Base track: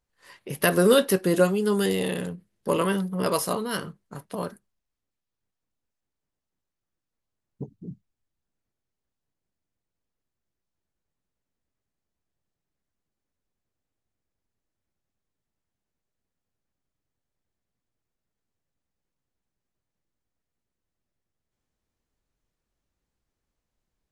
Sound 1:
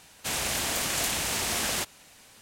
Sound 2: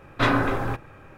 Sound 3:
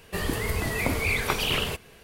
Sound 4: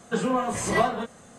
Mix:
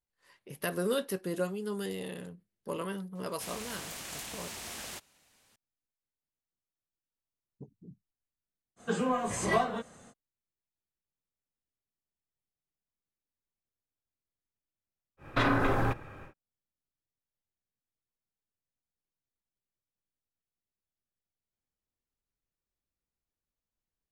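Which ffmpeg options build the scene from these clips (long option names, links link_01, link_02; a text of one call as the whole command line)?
ffmpeg -i bed.wav -i cue0.wav -i cue1.wav -i cue2.wav -i cue3.wav -filter_complex "[0:a]volume=-12.5dB[link_01];[2:a]alimiter=limit=-16.5dB:level=0:latency=1:release=86[link_02];[1:a]atrim=end=2.41,asetpts=PTS-STARTPTS,volume=-13.5dB,afade=type=in:duration=0.004:curve=hsin,afade=type=out:start_time=2.406:duration=0.004:curve=hsin,adelay=3150[link_03];[4:a]atrim=end=1.38,asetpts=PTS-STARTPTS,volume=-5dB,afade=type=in:duration=0.05,afade=type=out:start_time=1.33:duration=0.05,adelay=8760[link_04];[link_02]atrim=end=1.17,asetpts=PTS-STARTPTS,volume=-0.5dB,afade=type=in:duration=0.1,afade=type=out:start_time=1.07:duration=0.1,adelay=15170[link_05];[link_01][link_03][link_04][link_05]amix=inputs=4:normalize=0" out.wav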